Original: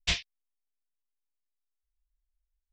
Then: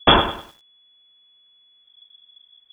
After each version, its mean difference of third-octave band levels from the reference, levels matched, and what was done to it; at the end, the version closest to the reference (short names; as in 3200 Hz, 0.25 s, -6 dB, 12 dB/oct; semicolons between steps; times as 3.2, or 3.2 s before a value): 17.5 dB: inverted band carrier 3400 Hz; maximiser +26 dB; lo-fi delay 0.1 s, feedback 35%, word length 7-bit, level -10 dB; gain -1 dB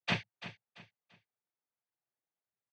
7.5 dB: LPF 1600 Hz 12 dB/oct; noise vocoder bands 16; feedback echo 0.339 s, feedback 32%, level -13.5 dB; gain +6 dB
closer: second